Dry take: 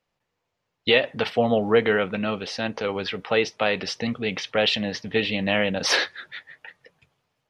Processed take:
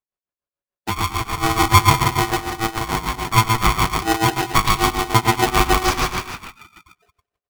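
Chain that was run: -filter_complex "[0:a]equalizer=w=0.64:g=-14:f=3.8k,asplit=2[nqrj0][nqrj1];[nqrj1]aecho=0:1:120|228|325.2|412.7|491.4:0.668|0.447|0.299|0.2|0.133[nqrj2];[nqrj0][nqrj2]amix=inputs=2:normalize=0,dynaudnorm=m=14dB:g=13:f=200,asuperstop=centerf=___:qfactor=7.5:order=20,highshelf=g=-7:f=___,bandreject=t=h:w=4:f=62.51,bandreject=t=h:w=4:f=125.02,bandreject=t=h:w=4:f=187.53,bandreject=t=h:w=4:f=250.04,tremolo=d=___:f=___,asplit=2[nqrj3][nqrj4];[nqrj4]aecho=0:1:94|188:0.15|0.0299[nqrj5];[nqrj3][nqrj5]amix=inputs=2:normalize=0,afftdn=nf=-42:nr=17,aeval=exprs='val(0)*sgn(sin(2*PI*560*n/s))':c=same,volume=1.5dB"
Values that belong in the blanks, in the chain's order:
1600, 7.6k, 0.88, 6.8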